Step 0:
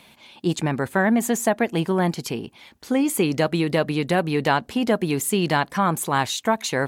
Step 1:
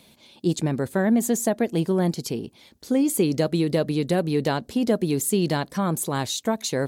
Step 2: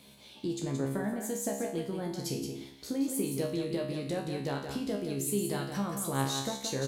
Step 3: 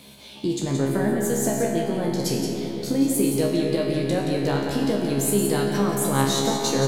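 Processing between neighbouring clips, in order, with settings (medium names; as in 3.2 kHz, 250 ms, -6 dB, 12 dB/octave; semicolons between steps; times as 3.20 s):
high-order bell 1.5 kHz -8.5 dB 2.3 oct
compression 4:1, threshold -30 dBFS, peak gain reduction 12 dB; feedback comb 68 Hz, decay 0.53 s, harmonics all, mix 90%; on a send: delay 174 ms -7 dB; on the sum: trim +8 dB
algorithmic reverb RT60 4.7 s, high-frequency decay 0.45×, pre-delay 45 ms, DRR 3 dB; trim +9 dB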